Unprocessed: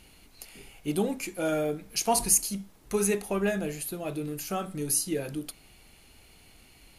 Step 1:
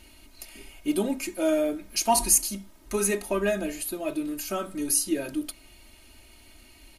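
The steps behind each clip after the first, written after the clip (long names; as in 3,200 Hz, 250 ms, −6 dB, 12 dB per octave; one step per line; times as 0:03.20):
comb filter 3.2 ms, depth 89%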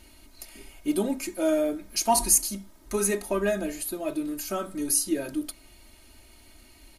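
parametric band 2,700 Hz −4.5 dB 0.54 octaves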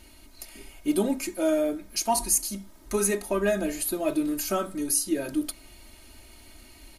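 speech leveller within 4 dB 0.5 s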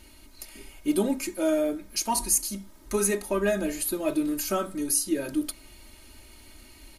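notch filter 690 Hz, Q 12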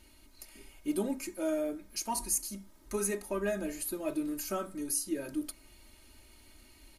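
dynamic equaliser 3,500 Hz, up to −4 dB, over −54 dBFS, Q 2.6
level −7.5 dB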